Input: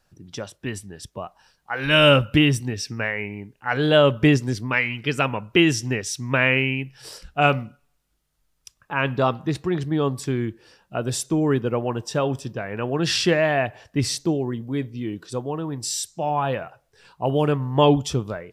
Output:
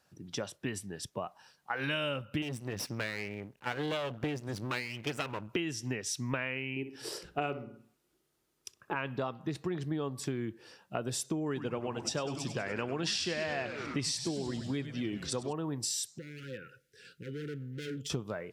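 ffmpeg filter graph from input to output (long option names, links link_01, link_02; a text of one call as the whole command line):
ffmpeg -i in.wav -filter_complex "[0:a]asettb=1/sr,asplit=3[link_01][link_02][link_03];[link_01]atrim=end=2.424[link_04];[link_02]atrim=start=2.42:end=5.49,asetpts=PTS-STARTPTS,afade=type=in:duration=0.004:curve=qsin,afade=type=out:start_time=3.066:duration=0.004:curve=qsin,lowshelf=frequency=82:gain=12,aeval=exprs='max(val(0),0)':channel_layout=same[link_05];[link_03]atrim=start=5.486[link_06];[link_04][link_05]acrossfade=duration=0.004:curve1=hsin:curve2=qsin[link_07];[link_07][link_06]acrossfade=duration=0.004:curve1=qsin:curve2=hsin,asettb=1/sr,asplit=3[link_08][link_09][link_10];[link_08]atrim=end=6.764[link_11];[link_09]atrim=start=6.76:end=8.95,asetpts=PTS-STARTPTS,afade=type=in:duration=0.004:curve=qsin,afade=type=out:start_time=2.186:duration=0.004:curve=qsin,equalizer=frequency=370:width_type=o:width=0.54:gain=14,asplit=2[link_12][link_13];[link_13]adelay=63,lowpass=frequency=1400:poles=1,volume=-11dB,asplit=2[link_14][link_15];[link_15]adelay=63,lowpass=frequency=1400:poles=1,volume=0.36,asplit=2[link_16][link_17];[link_17]adelay=63,lowpass=frequency=1400:poles=1,volume=0.36,asplit=2[link_18][link_19];[link_19]adelay=63,lowpass=frequency=1400:poles=1,volume=0.36[link_20];[link_12][link_14][link_16][link_18][link_20]amix=inputs=5:normalize=0,atrim=end_sample=96579[link_21];[link_10]atrim=start=8.946[link_22];[link_11][link_21]acrossfade=duration=0.004:curve1=hsin:curve2=qsin[link_23];[link_23][link_22]acrossfade=duration=0.004:curve1=qsin:curve2=hsin,asettb=1/sr,asplit=3[link_24][link_25][link_26];[link_24]atrim=end=11.464[link_27];[link_25]atrim=start=11.46:end=15.53,asetpts=PTS-STARTPTS,afade=type=in:duration=0.004:curve=qsin,afade=type=out:start_time=4.066:duration=0.004:curve=qsin,lowpass=8200,highshelf=frequency=2600:gain=10.5,asplit=8[link_28][link_29][link_30][link_31][link_32][link_33][link_34][link_35];[link_29]adelay=98,afreqshift=-130,volume=-10.5dB[link_36];[link_30]adelay=196,afreqshift=-260,volume=-15.1dB[link_37];[link_31]adelay=294,afreqshift=-390,volume=-19.7dB[link_38];[link_32]adelay=392,afreqshift=-520,volume=-24.2dB[link_39];[link_33]adelay=490,afreqshift=-650,volume=-28.8dB[link_40];[link_34]adelay=588,afreqshift=-780,volume=-33.4dB[link_41];[link_35]adelay=686,afreqshift=-910,volume=-38dB[link_42];[link_28][link_36][link_37][link_38][link_39][link_40][link_41][link_42]amix=inputs=8:normalize=0,atrim=end_sample=179487[link_43];[link_26]atrim=start=15.526[link_44];[link_27][link_43]acrossfade=duration=0.004:curve1=hsin:curve2=qsin[link_45];[link_45][link_44]acrossfade=duration=0.004:curve1=qsin:curve2=hsin,asettb=1/sr,asplit=3[link_46][link_47][link_48];[link_46]atrim=end=16.184[link_49];[link_47]atrim=start=16.18:end=18.1,asetpts=PTS-STARTPTS,afade=type=in:duration=0.004:curve=qsin,afade=type=out:start_time=1.916:duration=0.004:curve=qsin,asoftclip=type=hard:threshold=-22dB,acompressor=threshold=-35dB:ratio=10:attack=3.2:release=140:knee=1:detection=peak,asuperstop=centerf=850:order=20:qfactor=1[link_50];[link_48]atrim=start=18.096[link_51];[link_49][link_50]acrossfade=duration=0.004:curve1=hsin:curve2=qsin[link_52];[link_52][link_51]acrossfade=duration=0.004:curve1=qsin:curve2=hsin,highpass=120,acompressor=threshold=-29dB:ratio=10,volume=-2dB" out.wav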